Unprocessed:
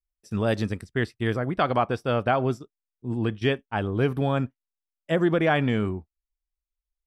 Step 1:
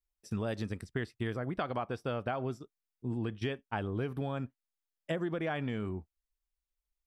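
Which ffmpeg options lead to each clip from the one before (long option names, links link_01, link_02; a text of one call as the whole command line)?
ffmpeg -i in.wav -af "acompressor=threshold=-30dB:ratio=6,volume=-1.5dB" out.wav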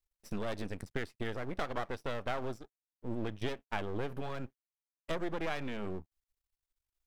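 ffmpeg -i in.wav -af "aeval=exprs='max(val(0),0)':channel_layout=same,volume=3dB" out.wav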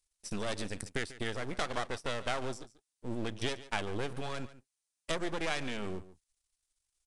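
ffmpeg -i in.wav -af "crystalizer=i=4:c=0,aecho=1:1:143:0.15,aresample=22050,aresample=44100" out.wav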